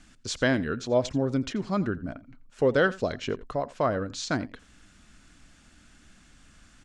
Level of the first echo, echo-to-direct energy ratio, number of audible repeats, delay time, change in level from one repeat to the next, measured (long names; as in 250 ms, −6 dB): −19.5 dB, −19.5 dB, 1, 85 ms, repeats not evenly spaced